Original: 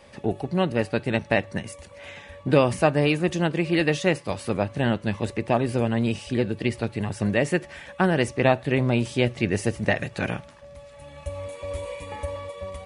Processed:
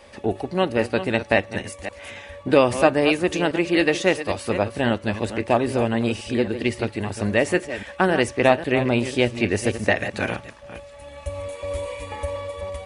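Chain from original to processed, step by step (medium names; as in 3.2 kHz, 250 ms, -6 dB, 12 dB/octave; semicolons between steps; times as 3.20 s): chunks repeated in reverse 270 ms, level -11 dB; peaking EQ 150 Hz -12.5 dB 0.59 oct; trim +3.5 dB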